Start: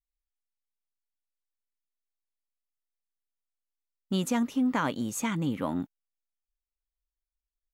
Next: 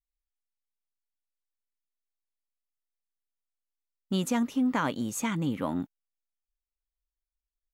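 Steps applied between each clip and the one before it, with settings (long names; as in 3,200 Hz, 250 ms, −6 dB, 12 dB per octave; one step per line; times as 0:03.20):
no processing that can be heard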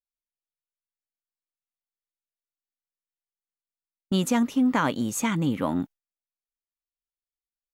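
noise gate with hold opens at −31 dBFS
level +4.5 dB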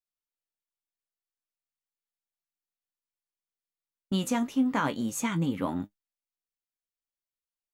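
flanger 0.34 Hz, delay 9.7 ms, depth 6.2 ms, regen +48%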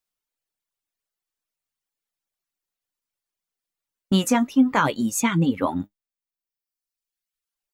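reverb reduction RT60 1.4 s
level +9 dB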